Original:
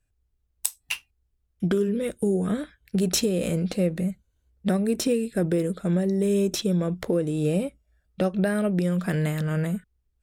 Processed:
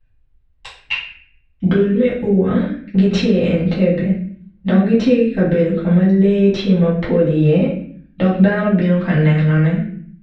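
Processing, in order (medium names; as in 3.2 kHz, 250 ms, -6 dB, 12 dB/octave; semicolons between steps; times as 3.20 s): low-pass 3.5 kHz 24 dB/octave; reverberation RT60 0.50 s, pre-delay 3 ms, DRR -7 dB; trim +2 dB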